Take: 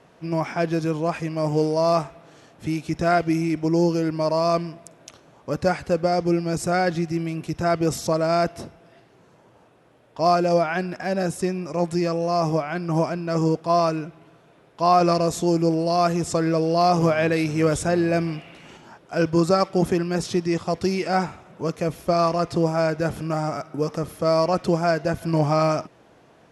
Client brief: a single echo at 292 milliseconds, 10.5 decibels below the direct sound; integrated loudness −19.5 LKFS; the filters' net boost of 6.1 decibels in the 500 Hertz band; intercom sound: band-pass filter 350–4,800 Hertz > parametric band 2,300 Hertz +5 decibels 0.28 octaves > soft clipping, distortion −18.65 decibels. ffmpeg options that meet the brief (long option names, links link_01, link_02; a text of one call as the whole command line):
ffmpeg -i in.wav -af "highpass=350,lowpass=4800,equalizer=frequency=500:width_type=o:gain=9,equalizer=frequency=2300:width_type=o:width=0.28:gain=5,aecho=1:1:292:0.299,asoftclip=threshold=-8.5dB,volume=0.5dB" out.wav